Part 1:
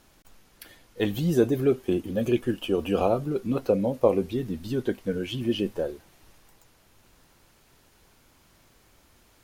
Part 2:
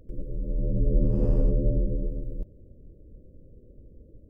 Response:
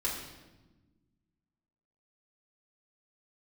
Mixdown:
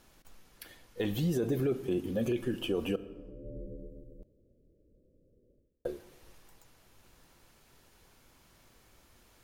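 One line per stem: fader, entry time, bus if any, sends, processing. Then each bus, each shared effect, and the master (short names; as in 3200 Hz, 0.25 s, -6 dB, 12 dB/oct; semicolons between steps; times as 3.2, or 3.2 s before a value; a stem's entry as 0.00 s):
-3.5 dB, 0.00 s, muted 2.96–5.85, send -18.5 dB, dry
-8.5 dB, 1.80 s, no send, low shelf 180 Hz -12 dB; auto duck -20 dB, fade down 0.30 s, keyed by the first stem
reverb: on, RT60 1.2 s, pre-delay 4 ms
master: limiter -22 dBFS, peak gain reduction 10 dB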